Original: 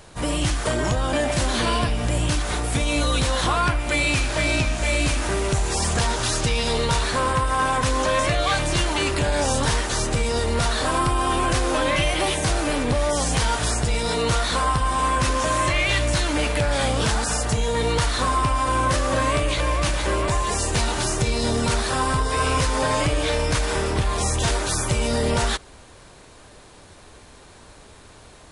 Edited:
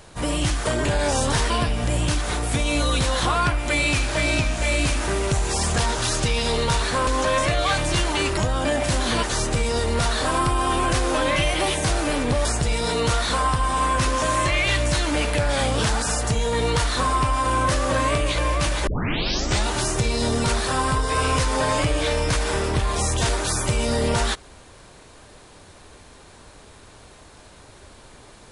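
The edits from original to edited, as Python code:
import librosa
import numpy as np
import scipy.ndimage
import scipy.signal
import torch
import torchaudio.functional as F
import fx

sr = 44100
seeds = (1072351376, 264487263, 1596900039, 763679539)

y = fx.edit(x, sr, fx.swap(start_s=0.85, length_s=0.86, other_s=9.18, other_length_s=0.65),
    fx.cut(start_s=7.28, length_s=0.6),
    fx.cut(start_s=13.05, length_s=0.62),
    fx.tape_start(start_s=20.09, length_s=0.8), tone=tone)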